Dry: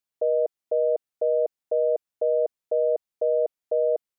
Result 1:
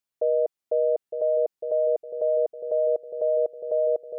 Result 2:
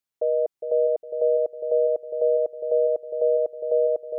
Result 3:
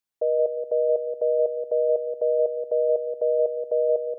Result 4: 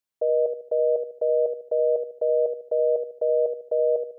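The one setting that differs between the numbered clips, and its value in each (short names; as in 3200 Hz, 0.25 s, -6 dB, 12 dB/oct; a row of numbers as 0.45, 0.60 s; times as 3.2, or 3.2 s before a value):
dark delay, time: 909, 408, 177, 75 ms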